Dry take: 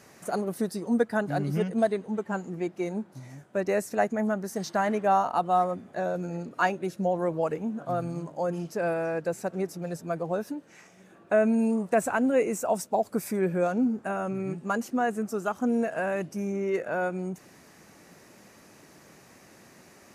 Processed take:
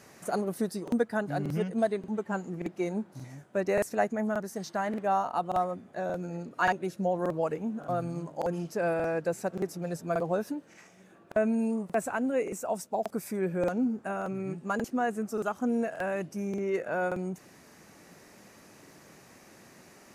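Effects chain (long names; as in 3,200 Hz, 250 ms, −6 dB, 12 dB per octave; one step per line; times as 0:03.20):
speech leveller 2 s
regular buffer underruns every 0.58 s, samples 2,048, repeat, from 0:00.83
level −3.5 dB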